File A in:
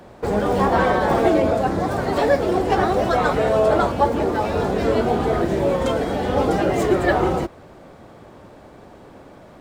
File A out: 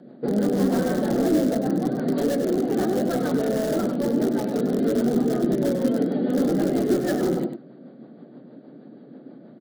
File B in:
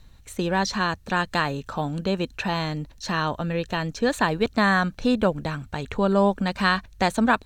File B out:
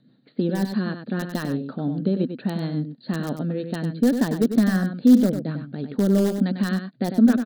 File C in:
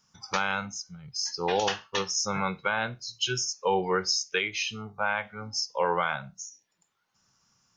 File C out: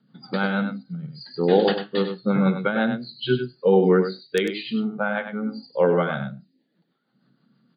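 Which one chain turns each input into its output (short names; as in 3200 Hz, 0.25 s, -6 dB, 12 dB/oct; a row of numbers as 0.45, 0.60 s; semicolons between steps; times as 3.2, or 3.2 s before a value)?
FFT band-pass 120–4800 Hz; high shelf 3100 Hz -6.5 dB; rotary speaker horn 6.3 Hz; in parallel at -6.5 dB: wrapped overs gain 15.5 dB; on the sum: fifteen-band EQ 250 Hz +11 dB, 1000 Hz -12 dB, 2500 Hz -12 dB; on a send: echo 98 ms -8 dB; on the sum: match loudness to -23 LUFS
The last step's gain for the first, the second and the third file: -6.0, -3.0, +8.0 dB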